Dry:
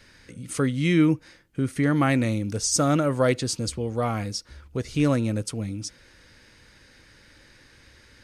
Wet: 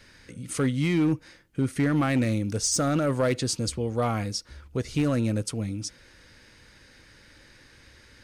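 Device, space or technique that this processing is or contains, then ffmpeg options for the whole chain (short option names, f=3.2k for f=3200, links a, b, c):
limiter into clipper: -af "alimiter=limit=-14.5dB:level=0:latency=1:release=25,asoftclip=type=hard:threshold=-17.5dB"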